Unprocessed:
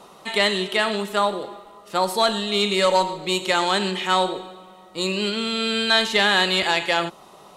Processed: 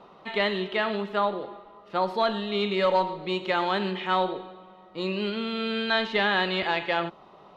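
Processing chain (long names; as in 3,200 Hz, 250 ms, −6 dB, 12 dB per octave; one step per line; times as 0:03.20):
high-frequency loss of the air 290 metres
level −3 dB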